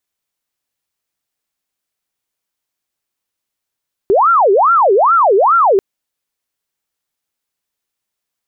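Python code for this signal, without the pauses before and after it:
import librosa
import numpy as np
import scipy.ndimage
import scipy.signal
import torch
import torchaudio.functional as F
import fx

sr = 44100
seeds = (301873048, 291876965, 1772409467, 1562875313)

y = fx.siren(sr, length_s=1.69, kind='wail', low_hz=381.0, high_hz=1380.0, per_s=2.4, wave='sine', level_db=-7.0)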